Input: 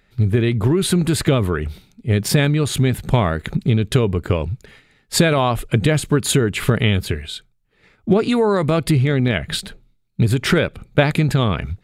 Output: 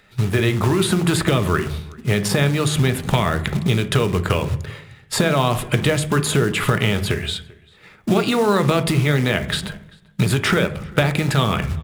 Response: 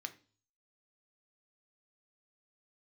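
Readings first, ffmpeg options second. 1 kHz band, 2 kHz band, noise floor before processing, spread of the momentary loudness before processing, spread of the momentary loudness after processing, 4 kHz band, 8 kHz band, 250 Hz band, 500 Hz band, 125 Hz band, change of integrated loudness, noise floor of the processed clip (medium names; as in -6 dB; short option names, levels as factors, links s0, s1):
+1.5 dB, +1.5 dB, -61 dBFS, 10 LU, 9 LU, +1.0 dB, -1.0 dB, -1.5 dB, -1.0 dB, -1.5 dB, -1.0 dB, -51 dBFS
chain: -filter_complex "[0:a]acrossover=split=490|1600[s0][s1][s2];[s0]acompressor=threshold=0.0708:ratio=4[s3];[s1]acompressor=threshold=0.0282:ratio=4[s4];[s2]acompressor=threshold=0.0251:ratio=4[s5];[s3][s4][s5]amix=inputs=3:normalize=0,acrusher=bits=5:mode=log:mix=0:aa=0.000001,asplit=2[s6][s7];[s7]adelay=390.7,volume=0.0631,highshelf=f=4000:g=-8.79[s8];[s6][s8]amix=inputs=2:normalize=0,asplit=2[s9][s10];[1:a]atrim=start_sample=2205,asetrate=22932,aresample=44100[s11];[s10][s11]afir=irnorm=-1:irlink=0,volume=1.78[s12];[s9][s12]amix=inputs=2:normalize=0,volume=0.841"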